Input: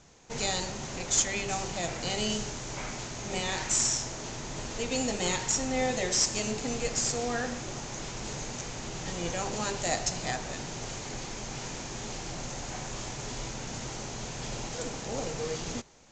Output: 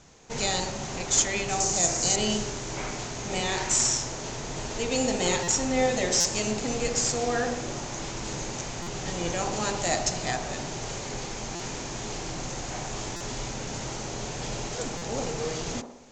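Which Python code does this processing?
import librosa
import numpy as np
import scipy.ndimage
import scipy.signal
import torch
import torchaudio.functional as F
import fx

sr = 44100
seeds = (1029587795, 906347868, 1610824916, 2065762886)

y = fx.high_shelf_res(x, sr, hz=4600.0, db=11.0, q=1.5, at=(1.6, 2.16))
y = fx.echo_wet_bandpass(y, sr, ms=62, feedback_pct=58, hz=540.0, wet_db=-5.0)
y = fx.buffer_glitch(y, sr, at_s=(5.43, 6.2, 8.82, 11.55, 13.16, 14.97), block=256, repeats=7)
y = F.gain(torch.from_numpy(y), 3.0).numpy()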